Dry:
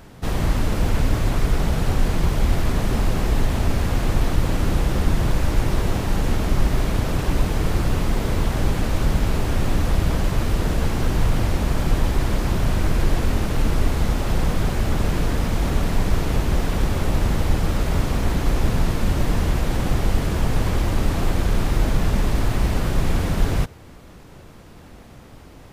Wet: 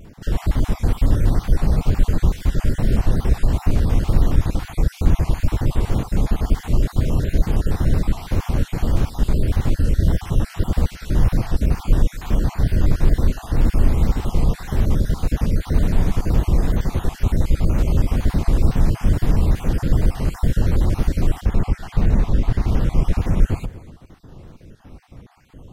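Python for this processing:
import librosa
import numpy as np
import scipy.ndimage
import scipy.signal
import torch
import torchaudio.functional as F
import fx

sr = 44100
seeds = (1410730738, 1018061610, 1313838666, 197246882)

y = fx.spec_dropout(x, sr, seeds[0], share_pct=39)
y = fx.high_shelf(y, sr, hz=6600.0, db=fx.steps((0.0, 2.0), (21.39, -10.5), (22.67, -4.5)))
y = y + 10.0 ** (-17.0 / 20.0) * np.pad(y, (int(246 * sr / 1000.0), 0))[:len(y)]
y = fx.wow_flutter(y, sr, seeds[1], rate_hz=2.1, depth_cents=100.0)
y = fx.low_shelf(y, sr, hz=420.0, db=8.5)
y = y * 10.0 ** (-4.0 / 20.0)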